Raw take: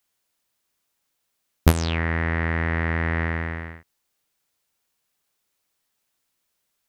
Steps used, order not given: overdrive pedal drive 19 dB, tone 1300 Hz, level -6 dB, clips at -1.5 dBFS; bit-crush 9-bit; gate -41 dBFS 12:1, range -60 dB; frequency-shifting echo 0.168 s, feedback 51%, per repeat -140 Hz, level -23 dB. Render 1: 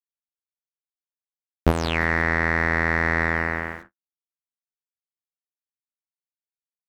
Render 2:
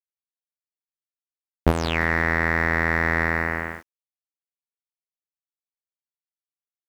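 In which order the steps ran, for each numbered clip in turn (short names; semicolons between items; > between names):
bit-crush > frequency-shifting echo > overdrive pedal > gate; frequency-shifting echo > gate > overdrive pedal > bit-crush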